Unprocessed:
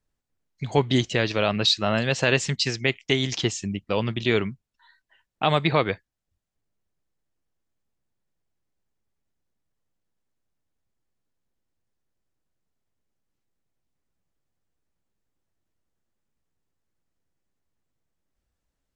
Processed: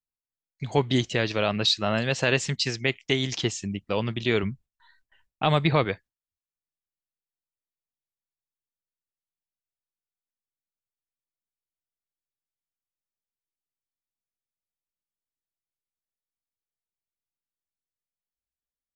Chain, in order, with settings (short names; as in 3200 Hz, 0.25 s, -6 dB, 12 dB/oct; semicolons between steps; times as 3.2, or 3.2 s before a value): gate with hold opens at -54 dBFS; 4.43–5.85 low shelf 110 Hz +11.5 dB; gain -2 dB